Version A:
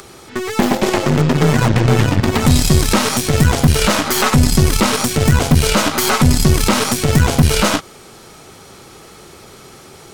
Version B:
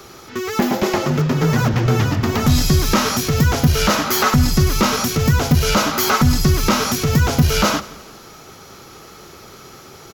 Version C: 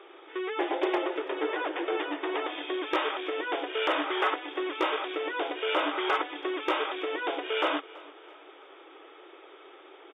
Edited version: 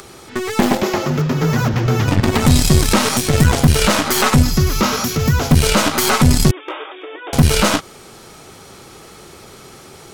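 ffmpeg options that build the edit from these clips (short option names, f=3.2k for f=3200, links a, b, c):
-filter_complex "[1:a]asplit=2[a][b];[0:a]asplit=4[c][d][e][f];[c]atrim=end=0.822[g];[a]atrim=start=0.818:end=2.082[h];[d]atrim=start=2.078:end=4.432[i];[b]atrim=start=4.428:end=5.502[j];[e]atrim=start=5.498:end=6.512[k];[2:a]atrim=start=6.508:end=7.332[l];[f]atrim=start=7.328[m];[g][h]acrossfade=d=0.004:c1=hsin:c2=hsin[n];[n][i]acrossfade=d=0.004:c1=hsin:c2=hsin[o];[o][j]acrossfade=d=0.004:c1=hsin:c2=hsin[p];[p][k]acrossfade=d=0.004:c1=hsin:c2=hsin[q];[q][l]acrossfade=d=0.004:c1=hsin:c2=hsin[r];[r][m]acrossfade=d=0.004:c1=hsin:c2=hsin"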